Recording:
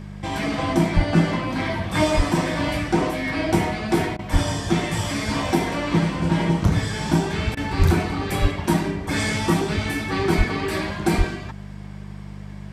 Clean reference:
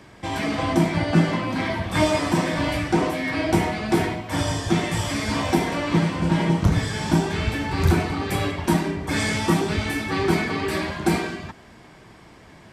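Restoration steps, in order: de-hum 49.9 Hz, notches 4; de-plosive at 0.95/2.16/4.32/7.78/8.41/10.37/11.17 s; interpolate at 4.17/7.55 s, 19 ms

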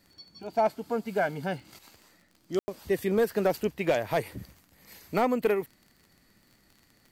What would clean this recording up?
clip repair -17 dBFS; de-click; room tone fill 2.59–2.68 s

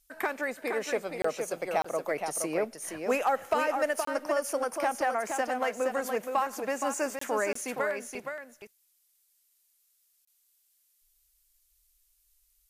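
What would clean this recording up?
clip repair -17.5 dBFS; interpolate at 1.22/1.82/4.05/7.19/7.53/10.25 s, 24 ms; expander -62 dBFS, range -21 dB; inverse comb 470 ms -6 dB

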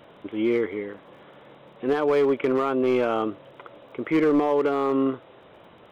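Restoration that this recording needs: clip repair -15.5 dBFS; de-click

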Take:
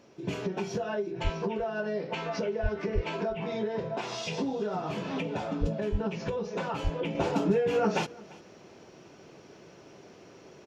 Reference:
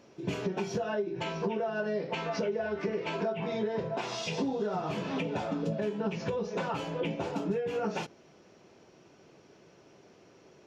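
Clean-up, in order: de-plosive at 1.23/2.62/2.94/5.60/5.91/6.83 s; inverse comb 343 ms -22.5 dB; trim 0 dB, from 7.15 s -6 dB

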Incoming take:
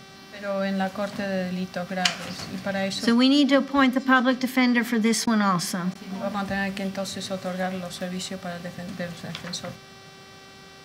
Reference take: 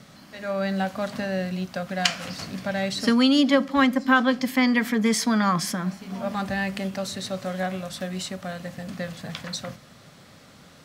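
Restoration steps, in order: de-hum 387.9 Hz, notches 15; interpolate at 5.26/5.94 s, 10 ms

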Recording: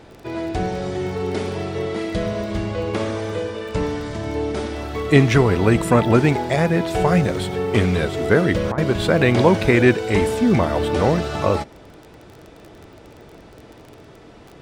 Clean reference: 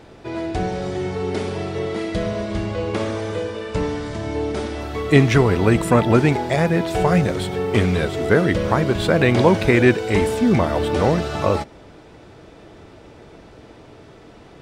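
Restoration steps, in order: de-click; interpolate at 8.72 s, 57 ms

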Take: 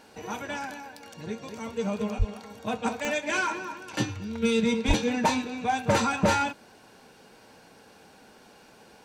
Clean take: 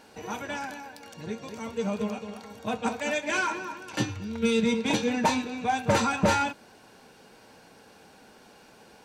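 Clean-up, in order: de-click; de-plosive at 2.18/4.87 s

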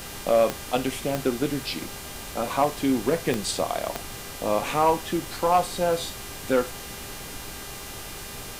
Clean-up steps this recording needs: de-click; de-hum 399.9 Hz, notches 37; band-stop 2.9 kHz, Q 30; noise print and reduce 30 dB

